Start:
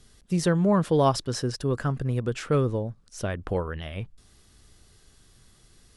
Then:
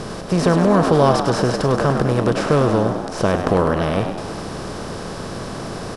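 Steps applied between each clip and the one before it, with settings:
compressor on every frequency bin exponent 0.4
high-shelf EQ 4,900 Hz −7.5 dB
on a send: echo with shifted repeats 101 ms, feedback 55%, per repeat +78 Hz, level −7.5 dB
on the sum: level +3.5 dB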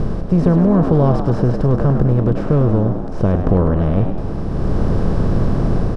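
spectral tilt −4.5 dB per octave
automatic gain control gain up to 4 dB
level −1 dB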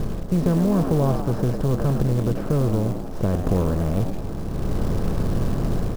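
log-companded quantiser 6 bits
level −6.5 dB

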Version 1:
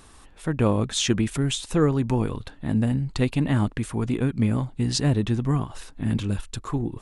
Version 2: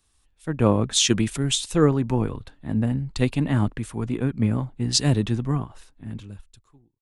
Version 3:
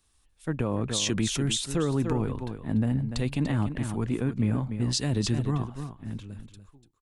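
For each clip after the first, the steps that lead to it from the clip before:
fade-out on the ending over 1.62 s; multiband upward and downward expander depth 70%
single-tap delay 292 ms −11 dB; brickwall limiter −15.5 dBFS, peak gain reduction 11 dB; level −1.5 dB

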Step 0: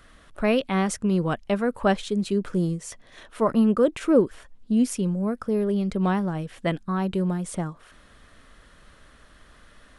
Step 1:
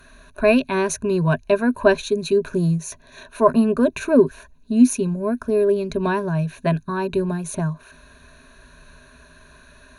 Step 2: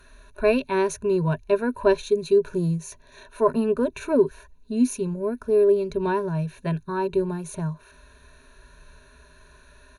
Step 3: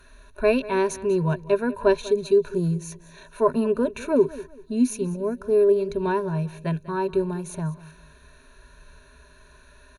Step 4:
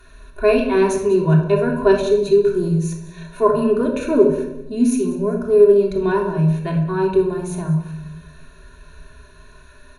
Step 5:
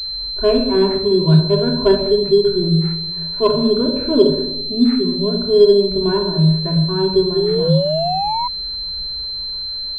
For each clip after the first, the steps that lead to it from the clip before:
EQ curve with evenly spaced ripples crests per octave 1.5, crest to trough 16 dB; level +2 dB
harmonic and percussive parts rebalanced percussive −6 dB; comb filter 2.2 ms, depth 45%; level −2.5 dB
repeating echo 195 ms, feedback 30%, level −18 dB
rectangular room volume 2,200 cubic metres, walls furnished, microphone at 3.3 metres; level +1.5 dB
sound drawn into the spectrogram rise, 0:07.36–0:08.48, 380–1,000 Hz −18 dBFS; low-shelf EQ 440 Hz +7.5 dB; switching amplifier with a slow clock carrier 4,100 Hz; level −3.5 dB

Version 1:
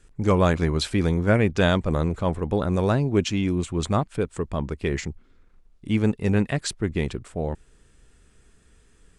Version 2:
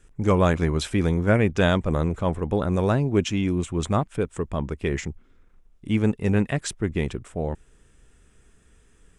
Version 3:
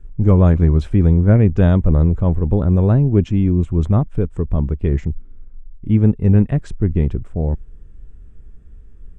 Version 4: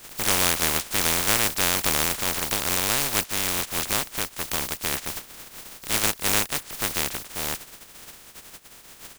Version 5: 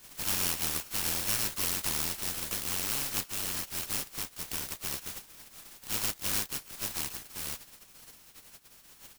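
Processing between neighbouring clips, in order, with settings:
parametric band 4,400 Hz −8 dB 0.3 octaves
spectral tilt −4.5 dB per octave; level −3 dB
compressing power law on the bin magnitudes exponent 0.1; level −10.5 dB
samples in bit-reversed order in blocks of 64 samples; level −8.5 dB

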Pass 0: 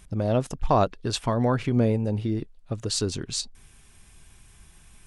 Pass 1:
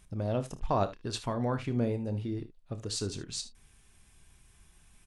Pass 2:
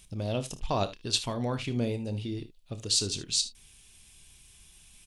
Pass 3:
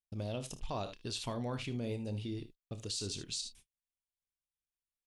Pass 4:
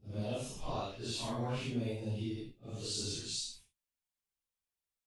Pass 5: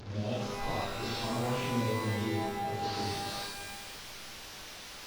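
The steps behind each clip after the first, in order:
ambience of single reflections 30 ms −12.5 dB, 58 ms −17 dB, 75 ms −16.5 dB; level −8 dB
high shelf with overshoot 2,200 Hz +9 dB, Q 1.5
noise gate −47 dBFS, range −42 dB; brickwall limiter −24 dBFS, peak gain reduction 11 dB; level −5 dB
random phases in long frames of 200 ms; level +1 dB
linear delta modulator 32 kbit/s, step −43 dBFS; reverb with rising layers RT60 1.6 s, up +12 semitones, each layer −2 dB, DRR 5.5 dB; level +2 dB

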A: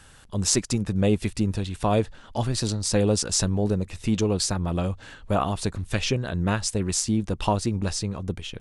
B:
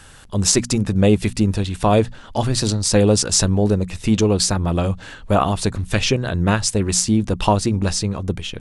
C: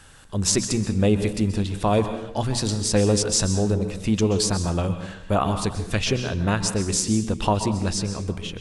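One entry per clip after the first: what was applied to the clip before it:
mains-hum notches 60/120/180/240 Hz; boost into a limiter +7 dB
dense smooth reverb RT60 0.75 s, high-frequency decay 0.8×, pre-delay 115 ms, DRR 8.5 dB; level −5 dB

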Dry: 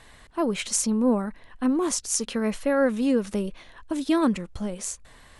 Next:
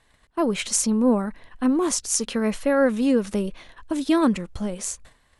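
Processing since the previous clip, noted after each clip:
noise gate −47 dBFS, range −14 dB
level +2.5 dB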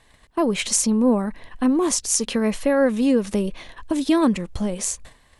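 in parallel at +2 dB: downward compressor, threshold −29 dBFS, peak gain reduction 14.5 dB
on the sum: parametric band 1,400 Hz −5.5 dB 0.27 octaves
level −1 dB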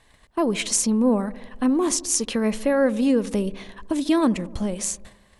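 delay with a low-pass on its return 73 ms, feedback 67%, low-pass 840 Hz, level −17.5 dB
level −1.5 dB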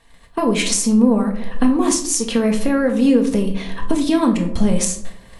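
camcorder AGC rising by 18 dB per second
rectangular room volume 510 cubic metres, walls furnished, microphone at 1.7 metres

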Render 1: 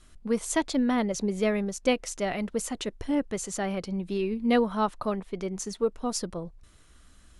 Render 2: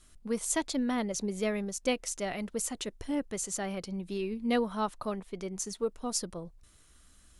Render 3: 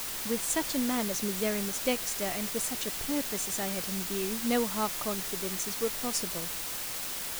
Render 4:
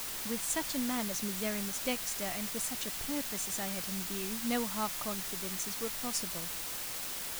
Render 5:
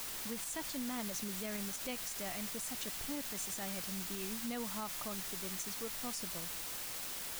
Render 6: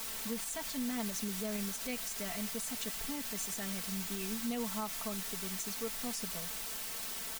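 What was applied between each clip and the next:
high-shelf EQ 5,400 Hz +9.5 dB; level −5.5 dB
bit-depth reduction 6 bits, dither triangular
dynamic equaliser 420 Hz, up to −6 dB, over −46 dBFS, Q 1.7; level −3 dB
brickwall limiter −27.5 dBFS, peak gain reduction 7 dB; level −3.5 dB
comb filter 4.5 ms, depth 72%

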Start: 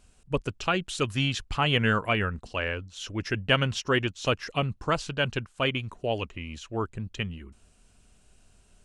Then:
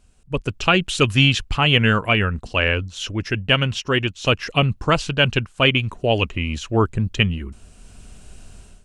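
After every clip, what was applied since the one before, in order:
dynamic equaliser 2,700 Hz, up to +6 dB, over −43 dBFS, Q 2.1
automatic gain control gain up to 15 dB
low-shelf EQ 280 Hz +4.5 dB
level −1 dB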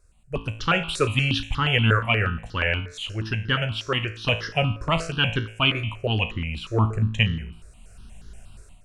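tuned comb filter 55 Hz, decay 0.56 s, harmonics all, mix 70%
step-sequenced phaser 8.4 Hz 820–2,500 Hz
level +5 dB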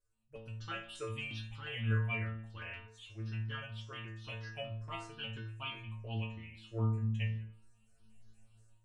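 stiff-string resonator 110 Hz, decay 0.56 s, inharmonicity 0.002
level −7 dB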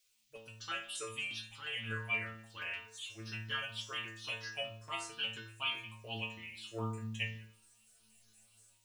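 RIAA equalisation recording
speech leveller 2 s
noise in a band 2,200–7,300 Hz −79 dBFS
level +1 dB

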